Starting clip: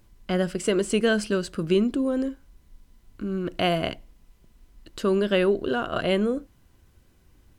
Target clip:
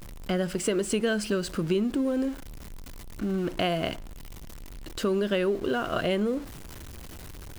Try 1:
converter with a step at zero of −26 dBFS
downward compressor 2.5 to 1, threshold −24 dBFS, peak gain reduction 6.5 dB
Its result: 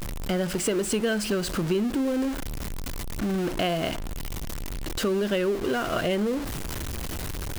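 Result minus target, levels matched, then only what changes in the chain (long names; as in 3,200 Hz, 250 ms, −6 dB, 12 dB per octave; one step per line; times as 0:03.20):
converter with a step at zero: distortion +9 dB
change: converter with a step at zero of −37 dBFS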